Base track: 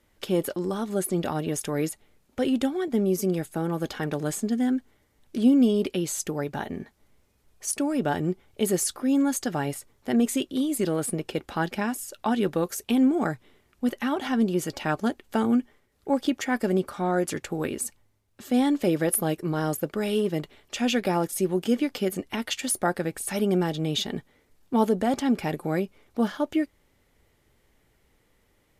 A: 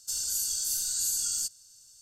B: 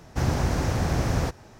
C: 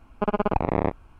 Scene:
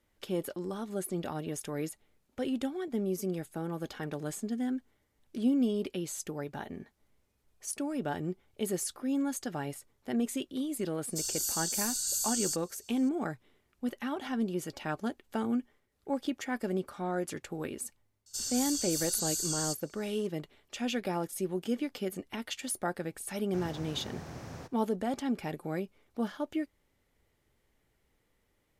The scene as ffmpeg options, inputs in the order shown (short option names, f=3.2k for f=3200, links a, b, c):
-filter_complex "[1:a]asplit=2[a][b];[0:a]volume=-8.5dB[c];[b]highshelf=f=7.7k:g=-9.5[d];[2:a]highpass=110[e];[a]atrim=end=2.01,asetpts=PTS-STARTPTS,volume=-3dB,afade=t=in:d=0.004:c=hsin,afade=t=out:st=2.006:d=0.004:c=hsin,adelay=11080[f];[d]atrim=end=2.01,asetpts=PTS-STARTPTS,afade=t=in:d=0.004:c=hsin,afade=t=out:st=2.006:d=0.004:c=hsin,adelay=18260[g];[e]atrim=end=1.59,asetpts=PTS-STARTPTS,volume=-17dB,afade=t=in:d=0.004:c=hsin,afade=t=out:st=1.586:d=0.004:c=hsin,adelay=23370[h];[c][f][g][h]amix=inputs=4:normalize=0"